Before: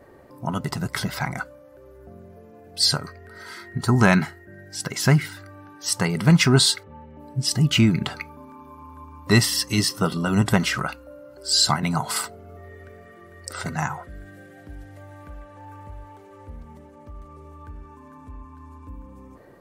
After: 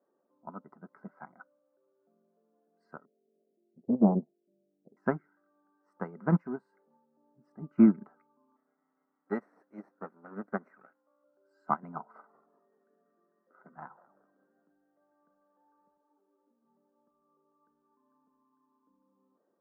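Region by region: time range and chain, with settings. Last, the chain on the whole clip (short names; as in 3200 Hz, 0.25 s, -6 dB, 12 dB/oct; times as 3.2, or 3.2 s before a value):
3.05–4.97 steep low-pass 650 Hz 72 dB/oct + Doppler distortion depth 0.76 ms
6.36–6.97 G.711 law mismatch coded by mu + bell 1300 Hz -9 dB 0.28 oct + compressor 2.5:1, threshold -19 dBFS
8.56–11.24 minimum comb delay 0.51 ms + low shelf 250 Hz -10.5 dB
11.96–14.72 bell 7300 Hz -13 dB 0.62 oct + frequency-shifting echo 0.191 s, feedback 39%, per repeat -140 Hz, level -11 dB
15.97–16.65 resonant low shelf 180 Hz -10 dB, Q 3 + detuned doubles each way 34 cents
whole clip: elliptic band-pass 200–1400 Hz, stop band 40 dB; upward expander 2.5:1, over -34 dBFS; gain +1.5 dB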